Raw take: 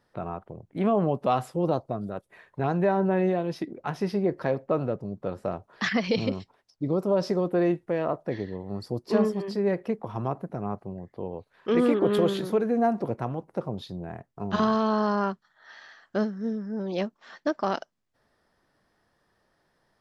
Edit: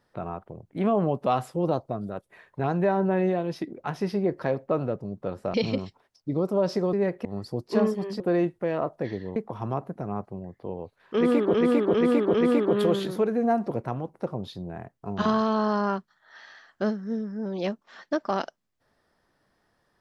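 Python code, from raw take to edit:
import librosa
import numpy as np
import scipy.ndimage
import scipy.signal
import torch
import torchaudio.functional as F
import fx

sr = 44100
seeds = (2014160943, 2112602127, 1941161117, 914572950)

y = fx.edit(x, sr, fx.cut(start_s=5.54, length_s=0.54),
    fx.swap(start_s=7.47, length_s=1.16, other_s=9.58, other_length_s=0.32),
    fx.repeat(start_s=11.68, length_s=0.4, count=4), tone=tone)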